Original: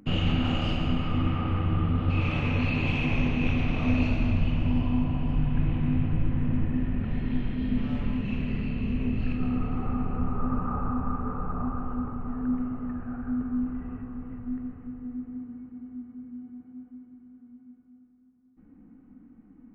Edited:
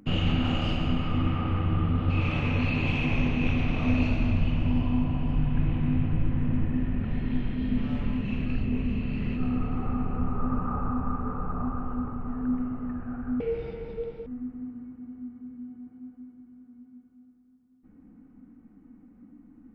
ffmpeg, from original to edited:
ffmpeg -i in.wav -filter_complex "[0:a]asplit=5[link_01][link_02][link_03][link_04][link_05];[link_01]atrim=end=8.462[link_06];[link_02]atrim=start=8.458:end=9.362,asetpts=PTS-STARTPTS,areverse[link_07];[link_03]atrim=start=9.358:end=13.404[link_08];[link_04]atrim=start=13.4:end=15,asetpts=PTS-STARTPTS,asetrate=81585,aresample=44100[link_09];[link_05]atrim=start=14.996[link_10];[link_06][link_07]acrossfade=duration=0.004:curve1=hsin:curve2=hsin[link_11];[link_11][link_08]acrossfade=duration=0.004:curve1=hsin:curve2=hsin[link_12];[link_12][link_09]acrossfade=duration=0.004:curve1=hsin:curve2=hsin[link_13];[link_13][link_10]acrossfade=duration=0.004:curve1=hsin:curve2=hsin" out.wav

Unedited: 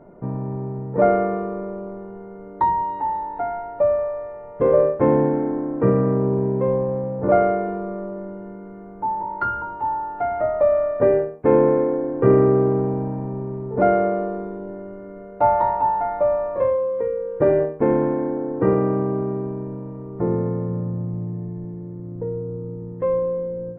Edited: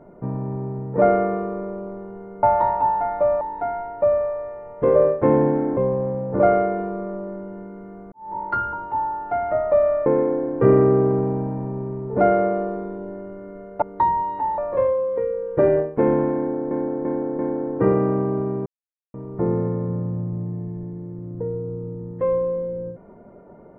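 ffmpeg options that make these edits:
ffmpeg -i in.wav -filter_complex "[0:a]asplit=13[link_01][link_02][link_03][link_04][link_05][link_06][link_07][link_08][link_09][link_10][link_11][link_12][link_13];[link_01]atrim=end=2.432[link_14];[link_02]atrim=start=15.428:end=16.412[link_15];[link_03]atrim=start=3.188:end=5.552[link_16];[link_04]atrim=start=6.658:end=9.01,asetpts=PTS-STARTPTS,afade=type=out:start_time=2.348:duration=0.004:curve=hsin[link_17];[link_05]atrim=start=9.01:end=10.952,asetpts=PTS-STARTPTS,afade=type=in:duration=0.25:curve=qua[link_18];[link_06]atrim=start=11.668:end=15.432[link_19];[link_07]atrim=start=2.428:end=3.192[link_20];[link_08]atrim=start=16.408:end=18.542[link_21];[link_09]atrim=start=18.198:end=18.542[link_22];[link_10]atrim=start=18.198:end=18.542[link_23];[link_11]atrim=start=18.198:end=19.47,asetpts=PTS-STARTPTS,afade=type=out:start_time=1.268:duration=0.004:curve=hsin[link_24];[link_12]atrim=start=19.47:end=19.95,asetpts=PTS-STARTPTS,volume=0[link_25];[link_13]atrim=start=19.95,asetpts=PTS-STARTPTS,afade=type=in:duration=0.004:curve=hsin[link_26];[link_14][link_15]acrossfade=duration=0.004:curve1=hsin:curve2=hsin[link_27];[link_27][link_16]acrossfade=duration=0.004:curve1=hsin:curve2=hsin[link_28];[link_17][link_18]concat=n=2:v=0:a=1[link_29];[link_28][link_29]acrossfade=duration=0.004:curve1=hsin:curve2=hsin[link_30];[link_30][link_19]acrossfade=duration=0.004:curve1=hsin:curve2=hsin[link_31];[link_31][link_20]acrossfade=duration=0.004:curve1=hsin:curve2=hsin[link_32];[link_32][link_21]acrossfade=duration=0.004:curve1=hsin:curve2=hsin[link_33];[link_33][link_22]acrossfade=duration=0.004:curve1=hsin:curve2=hsin[link_34];[link_34][link_23]acrossfade=duration=0.004:curve1=hsin:curve2=hsin[link_35];[link_24][link_25][link_26]concat=n=3:v=0:a=1[link_36];[link_35][link_36]acrossfade=duration=0.004:curve1=hsin:curve2=hsin" out.wav

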